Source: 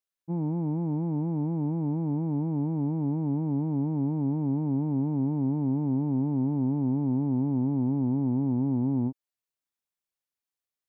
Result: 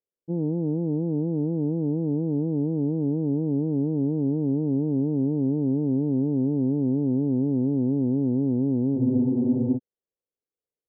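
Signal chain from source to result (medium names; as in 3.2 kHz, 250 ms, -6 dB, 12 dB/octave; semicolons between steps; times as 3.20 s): resonant low-pass 470 Hz, resonance Q 3.9; spectral freeze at 8.99 s, 0.78 s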